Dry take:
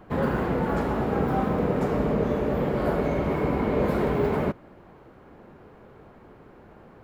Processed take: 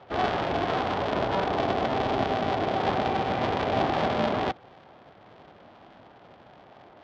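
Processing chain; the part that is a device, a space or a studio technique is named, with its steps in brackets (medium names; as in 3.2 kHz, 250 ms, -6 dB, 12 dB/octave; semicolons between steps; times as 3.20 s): bass shelf 130 Hz -10 dB; ring modulator pedal into a guitar cabinet (polarity switched at an audio rate 190 Hz; cabinet simulation 81–4600 Hz, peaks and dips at 110 Hz +3 dB, 750 Hz +7 dB, 3.3 kHz +5 dB); trim -1.5 dB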